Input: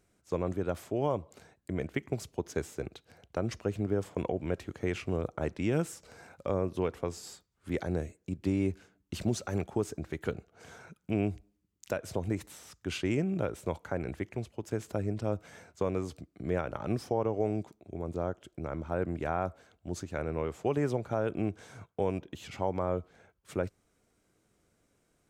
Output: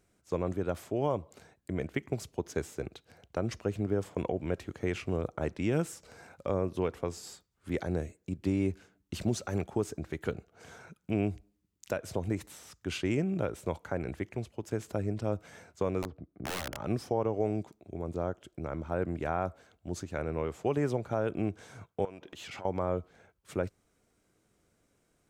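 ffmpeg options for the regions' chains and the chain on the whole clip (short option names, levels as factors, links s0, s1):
-filter_complex "[0:a]asettb=1/sr,asplit=3[s0][s1][s2];[s0]atrim=end=16.024[s3];[s1]atrim=start=16.02:end=16.78,asetpts=PTS-STARTPTS,afade=t=in:d=0.004:c=qsin,afade=t=out:st=0.756:d=0.004:c=qsin,lowpass=1200,aeval=exprs='(mod(26.6*val(0)+1,2)-1)/26.6':c=same[s4];[s2]atrim=start=16.776[s5];[s3][s4]acrossfade=d=0.004:c1=hsin:c2=qsin[s6];[s6][s5]acrossfade=d=0.004:c1=qsin:c2=hsin,asettb=1/sr,asplit=3[s7][s8][s9];[s7]atrim=end=22.054[s10];[s8]atrim=start=22.05:end=22.65,asetpts=PTS-STARTPTS,afade=t=in:d=0.004:c=qsin,afade=t=out:st=0.596:d=0.004:c=qsin,highshelf=f=4000:g=8.5,acompressor=threshold=0.00794:ratio=12:attack=3.2:release=140:knee=1:detection=peak,asplit=2[s11][s12];[s12]highpass=f=720:p=1,volume=5.01,asoftclip=type=tanh:threshold=0.0398[s13];[s11][s13]amix=inputs=2:normalize=0,lowpass=f=2100:p=1,volume=0.501[s14];[s9]atrim=start=22.646[s15];[s10][s14]acrossfade=d=0.004:c1=hsin:c2=qsin[s16];[s16][s15]acrossfade=d=0.004:c1=qsin:c2=hsin"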